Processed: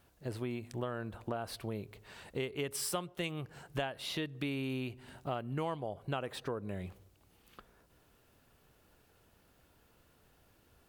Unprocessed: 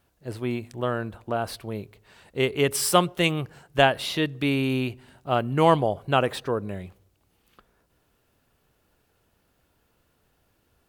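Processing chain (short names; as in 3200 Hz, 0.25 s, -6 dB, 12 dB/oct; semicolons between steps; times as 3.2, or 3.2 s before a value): compressor 5:1, threshold -37 dBFS, peak gain reduction 21 dB; gain +1 dB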